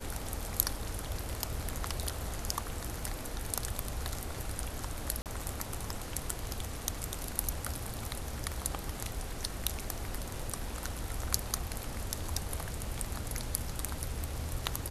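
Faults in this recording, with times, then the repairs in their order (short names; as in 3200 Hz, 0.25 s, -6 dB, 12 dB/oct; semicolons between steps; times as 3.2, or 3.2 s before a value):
5.22–5.26 gap 38 ms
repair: interpolate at 5.22, 38 ms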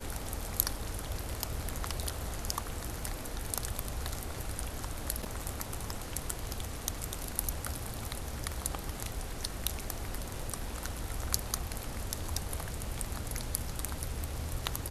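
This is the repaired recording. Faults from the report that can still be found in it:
none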